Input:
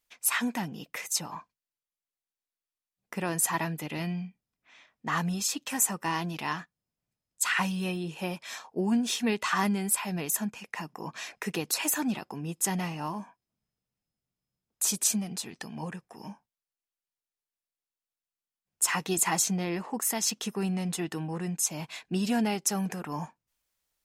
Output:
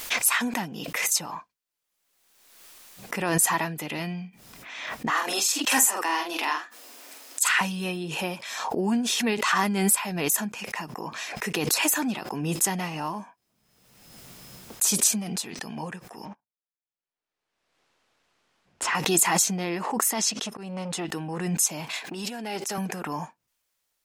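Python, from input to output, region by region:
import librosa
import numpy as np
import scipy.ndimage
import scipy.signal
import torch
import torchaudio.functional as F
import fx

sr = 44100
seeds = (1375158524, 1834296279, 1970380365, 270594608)

y = fx.chain(x, sr, fx.steep_highpass(hz=240.0, slope=72),
    fx.low_shelf(hz=320.0, db=-8.0),
    fx.doubler(ms=46.0, db=-4.0), at=(5.1, 7.61))
y = fx.chain(y, sr, fx.leveller(passes=3),
    fx.level_steps(step_db=13),
    fx.spacing_loss(db_at_10k=22), at=(16.25, 18.95))
y = fx.chain(y, sr, fx.lowpass(hz=8200.0, slope=12),
    fx.auto_swell(attack_ms=222.0),
    fx.transformer_sat(knee_hz=1000.0), at=(20.1, 21.05))
y = fx.chain(y, sr, fx.over_compress(threshold_db=-32.0, ratio=-1.0),
    fx.highpass(hz=260.0, slope=12),
    fx.transformer_sat(knee_hz=650.0), at=(21.93, 22.78))
y = fx.low_shelf(y, sr, hz=170.0, db=-9.5)
y = fx.pre_swell(y, sr, db_per_s=40.0)
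y = F.gain(torch.from_numpy(y), 4.0).numpy()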